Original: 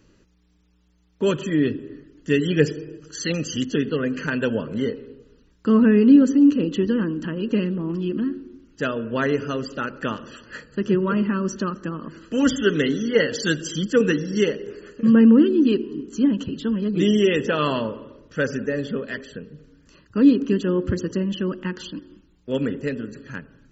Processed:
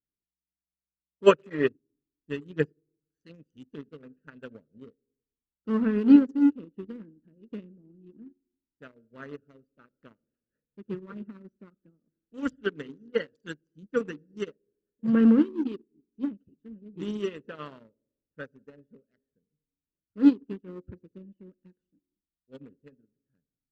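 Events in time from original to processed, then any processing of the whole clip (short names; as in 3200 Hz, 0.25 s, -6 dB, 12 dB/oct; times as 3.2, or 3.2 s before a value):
1.27–1.68 spectral gain 380–3000 Hz +10 dB
whole clip: Wiener smoothing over 41 samples; dynamic EQ 1300 Hz, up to +5 dB, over -43 dBFS, Q 1.9; upward expander 2.5:1, over -35 dBFS; gain -1 dB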